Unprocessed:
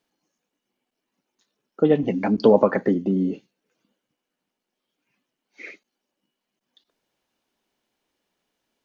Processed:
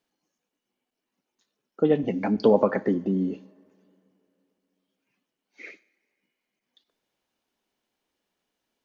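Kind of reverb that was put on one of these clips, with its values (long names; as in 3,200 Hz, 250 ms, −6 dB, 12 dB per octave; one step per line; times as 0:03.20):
coupled-rooms reverb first 0.71 s, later 3.1 s, from −16 dB, DRR 17.5 dB
level −3.5 dB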